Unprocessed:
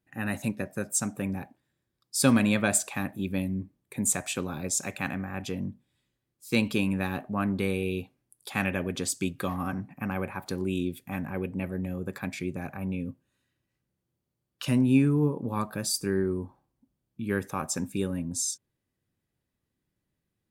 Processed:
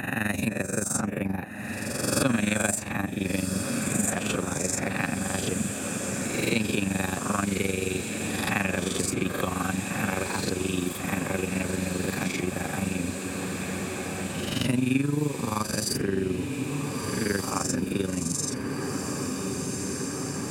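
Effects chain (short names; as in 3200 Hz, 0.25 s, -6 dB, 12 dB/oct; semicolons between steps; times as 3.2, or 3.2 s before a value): spectral swells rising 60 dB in 0.74 s; AM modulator 23 Hz, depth 65%; on a send: diffused feedback echo 1.526 s, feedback 72%, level -11 dB; on the sum: three-band squash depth 70%; gain +3.5 dB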